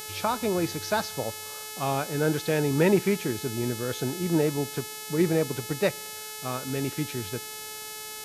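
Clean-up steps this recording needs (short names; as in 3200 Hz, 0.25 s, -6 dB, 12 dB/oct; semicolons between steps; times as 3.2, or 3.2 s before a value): de-hum 430.7 Hz, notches 32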